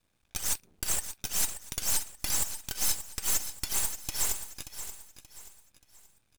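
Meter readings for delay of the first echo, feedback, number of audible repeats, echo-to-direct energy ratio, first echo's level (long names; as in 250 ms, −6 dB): 580 ms, 36%, 3, −10.5 dB, −11.0 dB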